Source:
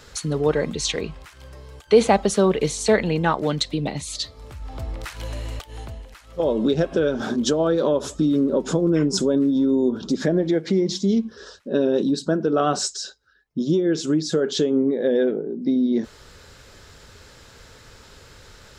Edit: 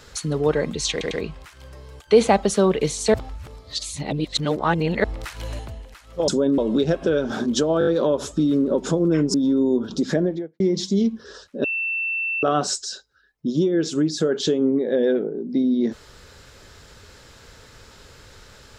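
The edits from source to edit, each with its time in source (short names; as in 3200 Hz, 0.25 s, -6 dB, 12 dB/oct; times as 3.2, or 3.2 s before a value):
0.91 stutter 0.10 s, 3 plays
2.94–4.84 reverse
5.39–5.79 cut
7.69 stutter 0.02 s, 5 plays
9.16–9.46 move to 6.48
10.26–10.72 studio fade out
11.76–12.55 bleep 2680 Hz -22 dBFS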